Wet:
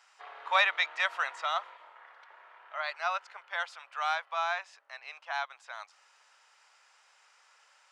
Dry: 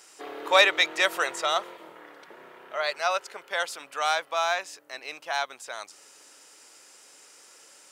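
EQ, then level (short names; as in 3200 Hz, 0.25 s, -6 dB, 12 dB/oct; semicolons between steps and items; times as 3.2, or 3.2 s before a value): HPF 810 Hz 24 dB/oct; tape spacing loss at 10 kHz 25 dB; 0.0 dB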